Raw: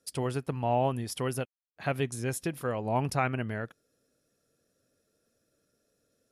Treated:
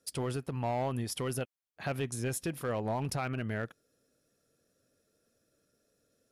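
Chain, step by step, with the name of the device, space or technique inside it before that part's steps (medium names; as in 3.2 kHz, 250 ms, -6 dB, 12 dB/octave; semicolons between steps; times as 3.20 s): limiter into clipper (peak limiter -23 dBFS, peak gain reduction 8 dB; hard clipper -26.5 dBFS, distortion -18 dB)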